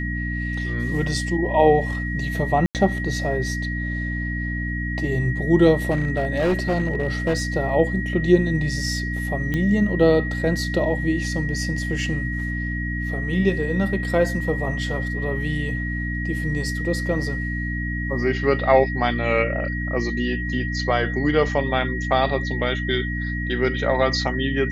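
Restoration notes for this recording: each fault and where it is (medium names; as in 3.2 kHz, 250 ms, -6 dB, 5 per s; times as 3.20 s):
hum 60 Hz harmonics 5 -27 dBFS
whine 1.9 kHz -29 dBFS
2.66–2.75 s: dropout 88 ms
5.90–7.43 s: clipped -16 dBFS
9.54 s: pop -13 dBFS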